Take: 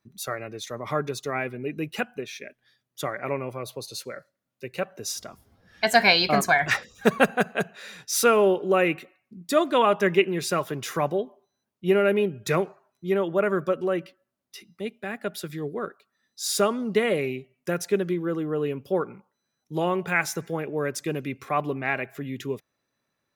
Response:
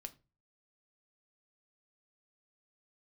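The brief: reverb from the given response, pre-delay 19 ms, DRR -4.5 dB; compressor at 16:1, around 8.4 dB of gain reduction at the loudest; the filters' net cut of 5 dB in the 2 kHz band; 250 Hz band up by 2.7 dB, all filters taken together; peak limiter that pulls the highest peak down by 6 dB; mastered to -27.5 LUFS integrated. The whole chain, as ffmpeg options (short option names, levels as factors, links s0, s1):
-filter_complex "[0:a]equalizer=f=250:t=o:g=4,equalizer=f=2000:t=o:g=-6.5,acompressor=threshold=0.0891:ratio=16,alimiter=limit=0.133:level=0:latency=1,asplit=2[s0][s1];[1:a]atrim=start_sample=2205,adelay=19[s2];[s1][s2]afir=irnorm=-1:irlink=0,volume=2.99[s3];[s0][s3]amix=inputs=2:normalize=0,volume=0.668"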